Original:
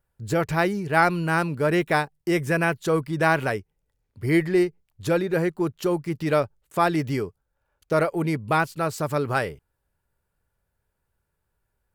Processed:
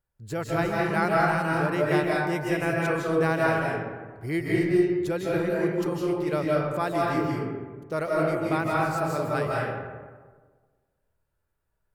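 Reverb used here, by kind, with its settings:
comb and all-pass reverb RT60 1.5 s, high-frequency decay 0.45×, pre-delay 120 ms, DRR −4.5 dB
level −8 dB

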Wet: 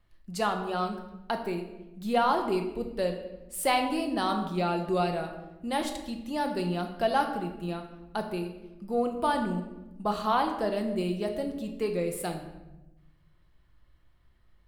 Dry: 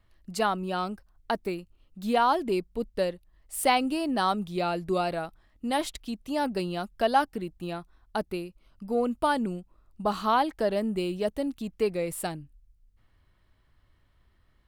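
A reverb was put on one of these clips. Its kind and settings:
rectangular room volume 450 cubic metres, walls mixed, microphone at 0.86 metres
level −3 dB

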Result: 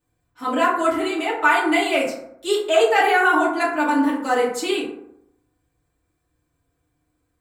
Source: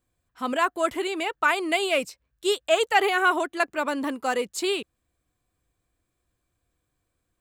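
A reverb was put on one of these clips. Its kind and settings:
feedback delay network reverb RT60 0.78 s, low-frequency decay 1×, high-frequency decay 0.4×, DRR −8 dB
level −4 dB

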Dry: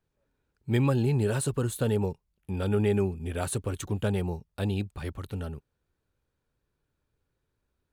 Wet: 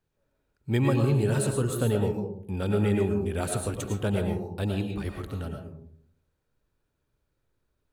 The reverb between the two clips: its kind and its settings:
comb and all-pass reverb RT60 0.65 s, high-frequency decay 0.3×, pre-delay 70 ms, DRR 3 dB

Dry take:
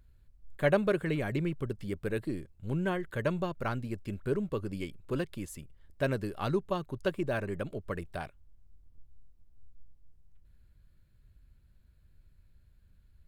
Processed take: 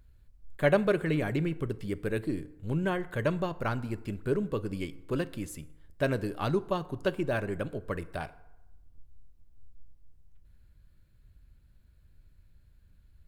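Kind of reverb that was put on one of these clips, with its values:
feedback delay network reverb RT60 0.97 s, low-frequency decay 0.8×, high-frequency decay 0.55×, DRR 14.5 dB
level +2 dB

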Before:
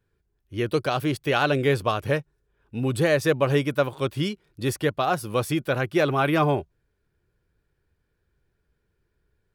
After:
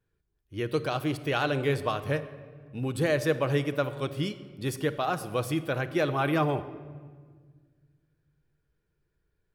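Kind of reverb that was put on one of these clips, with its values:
rectangular room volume 2,000 cubic metres, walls mixed, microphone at 0.56 metres
level −5.5 dB

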